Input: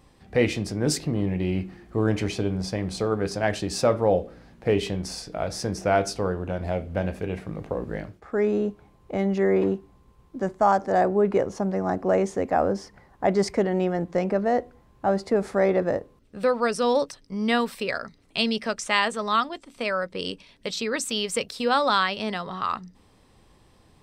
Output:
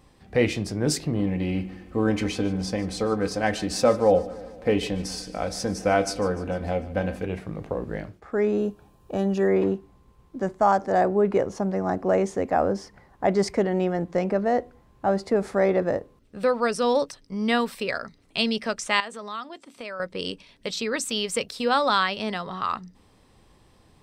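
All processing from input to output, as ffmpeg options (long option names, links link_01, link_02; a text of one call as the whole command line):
ffmpeg -i in.wav -filter_complex "[0:a]asettb=1/sr,asplit=3[link_01][link_02][link_03];[link_01]atrim=end=1.194[link_04];[link_02]atrim=start=1.19:end=7.25,asetpts=PTS-STARTPTS,afade=type=in:duration=0.004:curve=qsin,afade=type=out:start_time=6.056:duration=0.004:curve=qsin,aecho=1:1:3.9:0.53,atrim=end_sample=267246,aecho=1:1:149|298|447|596|745:0.126|0.073|0.0424|0.0246|0.0142,atrim=end_sample=267246[link_05];[link_03]atrim=start=7.246[link_06];[link_04][link_05]acrossfade=duration=0.004:curve1=hsin:curve2=qsin[link_07];[link_07][link_06]acrossfade=duration=0.004:curve1=qsin:curve2=hsin,asettb=1/sr,asplit=3[link_08][link_09][link_10];[link_08]atrim=end=8.584[link_11];[link_09]atrim=start=8.58:end=9.48,asetpts=PTS-STARTPTS,afade=type=in:duration=0.004:curve=qsin,afade=type=out:start_time=0.896:duration=0.004:curve=qsin,asuperstop=centerf=2100:order=12:qfactor=6.3,highshelf=frequency=7900:gain=10[link_12];[link_10]atrim=start=9.476[link_13];[link_11][link_12]acrossfade=duration=0.004:curve1=hsin:curve2=qsin[link_14];[link_14][link_13]acrossfade=duration=0.004:curve1=qsin:curve2=hsin,asettb=1/sr,asplit=3[link_15][link_16][link_17];[link_15]atrim=end=19.004[link_18];[link_16]atrim=start=19:end=20,asetpts=PTS-STARTPTS,afade=type=in:duration=0.004:curve=qsin,afade=type=out:start_time=0.996:duration=0.004:curve=qsin,highpass=160,acompressor=threshold=-39dB:ratio=2:attack=3.2:release=140:knee=1:detection=peak[link_19];[link_17]atrim=start=19.996[link_20];[link_18][link_19]acrossfade=duration=0.004:curve1=hsin:curve2=qsin[link_21];[link_21][link_20]acrossfade=duration=0.004:curve1=qsin:curve2=hsin" out.wav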